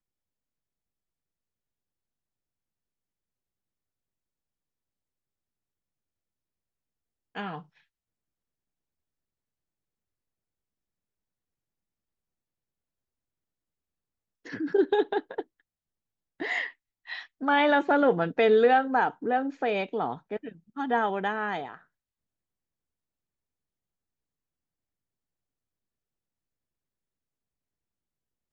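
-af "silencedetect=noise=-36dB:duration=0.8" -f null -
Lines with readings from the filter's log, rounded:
silence_start: 0.00
silence_end: 7.36 | silence_duration: 7.36
silence_start: 7.59
silence_end: 14.46 | silence_duration: 6.87
silence_start: 15.41
silence_end: 16.40 | silence_duration: 0.99
silence_start: 21.75
silence_end: 28.52 | silence_duration: 6.77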